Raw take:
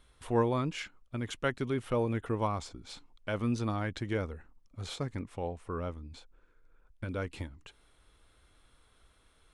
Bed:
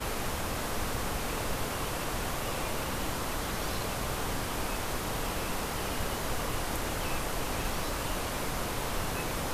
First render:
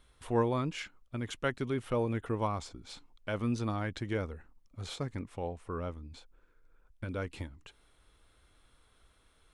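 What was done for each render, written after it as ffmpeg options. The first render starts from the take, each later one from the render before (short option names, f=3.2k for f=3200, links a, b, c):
-af "volume=-1dB"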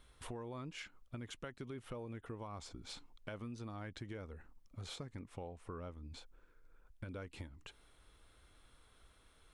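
-af "alimiter=level_in=2dB:limit=-24dB:level=0:latency=1:release=204,volume=-2dB,acompressor=threshold=-44dB:ratio=5"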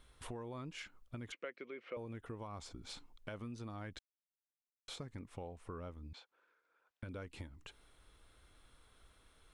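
-filter_complex "[0:a]asettb=1/sr,asplit=3[a][b][c];[a]atrim=end=1.324[d];[b]atrim=start=1.32:end=1.97,asetpts=PTS-STARTPTS,afade=t=in:d=0.004:c=qsin,afade=t=out:st=0.646:d=0.004:c=qsin,highpass=f=260:w=0.5412,highpass=f=260:w=1.3066,equalizer=f=260:t=q:w=4:g=-5,equalizer=f=510:t=q:w=4:g=7,equalizer=f=860:t=q:w=4:g=-9,equalizer=f=2.2k:t=q:w=4:g=10,equalizer=f=3.6k:t=q:w=4:g=-6,lowpass=f=4.2k:w=0.5412,lowpass=f=4.2k:w=1.3066[e];[c]atrim=start=1.966[f];[d][e]acrossfade=d=0.004:c1=hsin:c2=qsin[g];[g][f]acrossfade=d=0.004:c1=qsin:c2=hsin,asettb=1/sr,asplit=3[h][i][j];[h]atrim=end=6.134[k];[i]atrim=start=6.13:end=7.03,asetpts=PTS-STARTPTS,afade=t=in:d=0.004:c=qsin,afade=t=out:st=0.896:d=0.004:c=qsin,highpass=620,lowpass=4.4k[l];[j]atrim=start=7.026[m];[k][l]acrossfade=d=0.004:c1=hsin:c2=qsin[n];[n][m]acrossfade=d=0.004:c1=qsin:c2=hsin,asplit=3[o][p][q];[o]atrim=end=3.99,asetpts=PTS-STARTPTS,afade=t=out:st=3.986:d=0.004:c=hsin[r];[p]atrim=start=3.99:end=4.88,asetpts=PTS-STARTPTS,volume=0[s];[q]atrim=start=4.88,asetpts=PTS-STARTPTS,afade=t=in:d=0.004:c=hsin[t];[r][s][t]concat=n=3:v=0:a=1"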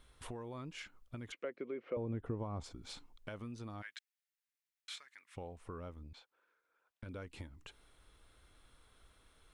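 -filter_complex "[0:a]asettb=1/sr,asplit=3[a][b][c];[a]atrim=end=1.444[d];[b]atrim=start=1.44:end=2.64,asetpts=PTS-STARTPTS,afade=t=in:d=0.004:c=qsin,afade=t=out:st=1.196:d=0.004:c=qsin,tiltshelf=f=1.2k:g=8.5[e];[c]atrim=start=2.636[f];[d][e]acrossfade=d=0.004:c1=hsin:c2=qsin[g];[g][f]acrossfade=d=0.004:c1=qsin:c2=hsin,asplit=3[h][i][j];[h]afade=t=out:st=3.81:d=0.02[k];[i]highpass=f=1.8k:t=q:w=1.9,afade=t=in:st=3.81:d=0.02,afade=t=out:st=5.35:d=0.02[l];[j]afade=t=in:st=5.35:d=0.02[m];[k][l][m]amix=inputs=3:normalize=0,asettb=1/sr,asplit=3[n][o][p];[n]atrim=end=6.034[q];[o]atrim=start=6.03:end=7.06,asetpts=PTS-STARTPTS,afade=t=in:d=0.004:c=qsin,afade=t=out:st=1.026:d=0.004:c=qsin,aeval=exprs='(tanh(100*val(0)+0.55)-tanh(0.55))/100':c=same[r];[p]atrim=start=7.056[s];[q][r]acrossfade=d=0.004:c1=hsin:c2=qsin[t];[t][s]acrossfade=d=0.004:c1=qsin:c2=hsin"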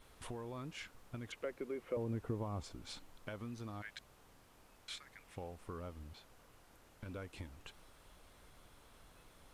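-filter_complex "[1:a]volume=-31.5dB[a];[0:a][a]amix=inputs=2:normalize=0"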